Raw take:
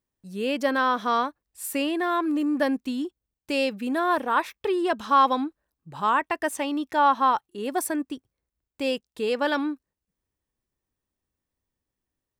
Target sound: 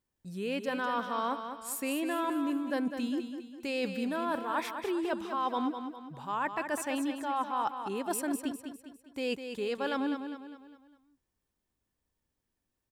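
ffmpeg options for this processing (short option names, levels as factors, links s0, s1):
-af "areverse,acompressor=threshold=0.0316:ratio=6,areverse,aecho=1:1:194|388|582|776|970:0.398|0.175|0.0771|0.0339|0.0149,asetrate=42336,aresample=44100"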